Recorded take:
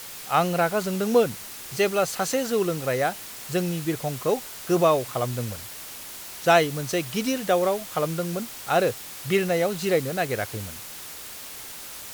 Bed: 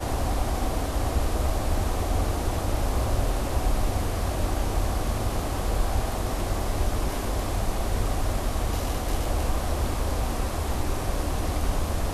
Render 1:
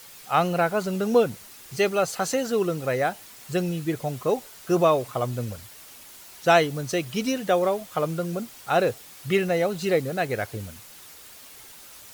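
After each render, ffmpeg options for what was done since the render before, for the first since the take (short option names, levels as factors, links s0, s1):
-af "afftdn=nr=8:nf=-39"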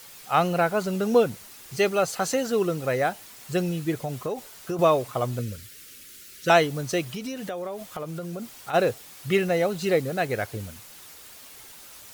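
-filter_complex "[0:a]asettb=1/sr,asplit=3[s0][s1][s2];[s0]atrim=end=3.984[s3];[s1]atrim=start=3.98:end=4.79,asetpts=PTS-STARTPTS,afade=t=in:d=0.004:c=qsin,afade=t=out:st=0.806:d=0.004:c=qsin,acompressor=threshold=0.0562:ratio=6:attack=3.2:release=140:knee=1:detection=peak[s4];[s2]atrim=start=4.786[s5];[s3][s4]acrossfade=d=0.004:c1=hsin:c2=qsin[s6];[s6][s5]acrossfade=d=0.004:c1=qsin:c2=hsin,asettb=1/sr,asplit=3[s7][s8][s9];[s7]atrim=end=5.394[s10];[s8]atrim=start=5.39:end=6.5,asetpts=PTS-STARTPTS,afade=t=in:d=0.004:c=qsin,afade=t=out:st=1.106:d=0.004:c=qsin,asuperstop=centerf=830:order=4:qfactor=0.92[s11];[s9]atrim=start=6.496[s12];[s10][s11]acrossfade=d=0.004:c1=hsin:c2=qsin[s13];[s13][s12]acrossfade=d=0.004:c1=qsin:c2=hsin,asplit=3[s14][s15][s16];[s14]afade=t=out:st=7.09:d=0.02[s17];[s15]acompressor=threshold=0.0316:ratio=5:attack=3.2:release=140:knee=1:detection=peak,afade=t=in:st=7.09:d=0.02,afade=t=out:st=8.73:d=0.02[s18];[s16]afade=t=in:st=8.73:d=0.02[s19];[s17][s18][s19]amix=inputs=3:normalize=0"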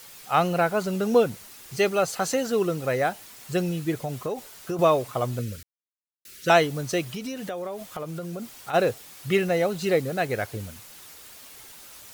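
-filter_complex "[0:a]asplit=3[s0][s1][s2];[s0]atrim=end=5.63,asetpts=PTS-STARTPTS,afade=t=out:st=5.626:d=0.004:c=hsin[s3];[s1]atrim=start=5.63:end=6.25,asetpts=PTS-STARTPTS,volume=0[s4];[s2]atrim=start=6.25,asetpts=PTS-STARTPTS,afade=t=in:d=0.004:c=hsin[s5];[s3][s4][s5]concat=n=3:v=0:a=1"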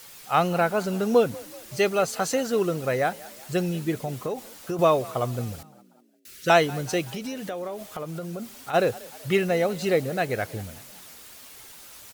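-filter_complex "[0:a]asplit=5[s0][s1][s2][s3][s4];[s1]adelay=189,afreqshift=40,volume=0.0841[s5];[s2]adelay=378,afreqshift=80,volume=0.0462[s6];[s3]adelay=567,afreqshift=120,volume=0.0254[s7];[s4]adelay=756,afreqshift=160,volume=0.014[s8];[s0][s5][s6][s7][s8]amix=inputs=5:normalize=0"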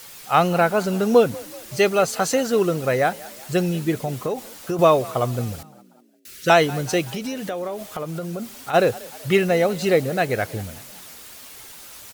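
-af "volume=1.68,alimiter=limit=0.708:level=0:latency=1"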